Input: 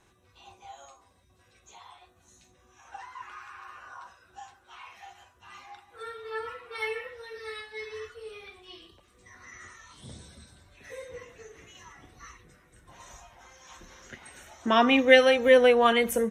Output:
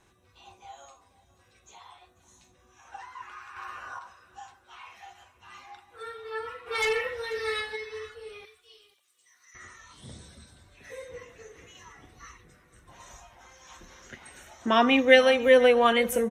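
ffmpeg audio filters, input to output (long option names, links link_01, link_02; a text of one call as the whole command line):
ffmpeg -i in.wav -filter_complex "[0:a]asettb=1/sr,asplit=3[link_01][link_02][link_03];[link_01]atrim=end=3.564[link_04];[link_02]atrim=start=3.56:end=3.99,asetpts=PTS-STARTPTS,afade=type=in:duration=0.004:curve=qsin,afade=type=out:start_time=0.426:duration=0.004:curve=qsin,acontrast=48[link_05];[link_03]atrim=start=3.986[link_06];[link_04][link_05]acrossfade=duration=0.004:curve1=hsin:curve2=qsin[link_07];[link_07][link_06]acrossfade=duration=0.004:curve1=qsin:curve2=hsin,asplit=3[link_08][link_09][link_10];[link_08]afade=type=out:start_time=6.66:duration=0.02[link_11];[link_09]aeval=exprs='0.106*(cos(1*acos(clip(val(0)/0.106,-1,1)))-cos(1*PI/2))+0.0422*(cos(5*acos(clip(val(0)/0.106,-1,1)))-cos(5*PI/2))':channel_layout=same,afade=type=in:start_time=6.66:duration=0.02,afade=type=out:start_time=7.75:duration=0.02[link_12];[link_10]afade=type=in:start_time=7.75:duration=0.02[link_13];[link_11][link_12][link_13]amix=inputs=3:normalize=0,asettb=1/sr,asplit=3[link_14][link_15][link_16];[link_14]atrim=end=8.454[link_17];[link_15]atrim=start=8.45:end=9.55,asetpts=PTS-STARTPTS,afade=type=in:duration=0.004:curve=qsin,afade=type=out:start_time=1.096:duration=0.004:curve=qsin,aderivative[link_18];[link_16]atrim=start=9.546[link_19];[link_17][link_18]acrossfade=duration=0.004:curve1=hsin:curve2=qsin[link_20];[link_20][link_19]acrossfade=duration=0.004:curve1=qsin:curve2=hsin,aecho=1:1:489:0.1" out.wav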